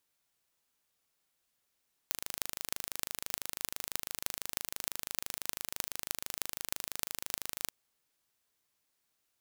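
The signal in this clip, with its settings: pulse train 26 per s, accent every 8, -3.5 dBFS 5.61 s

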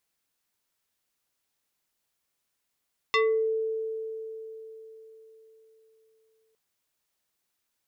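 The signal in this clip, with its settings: FM tone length 3.41 s, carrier 443 Hz, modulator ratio 3.55, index 2.3, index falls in 0.36 s exponential, decay 4.15 s, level -19 dB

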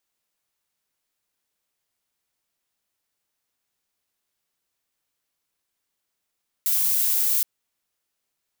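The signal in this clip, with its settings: noise violet, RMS -21.5 dBFS 0.77 s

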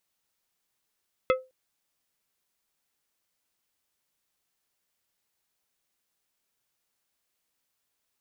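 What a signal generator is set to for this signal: glass hit plate, length 0.21 s, lowest mode 517 Hz, decay 0.25 s, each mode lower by 4 dB, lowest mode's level -16.5 dB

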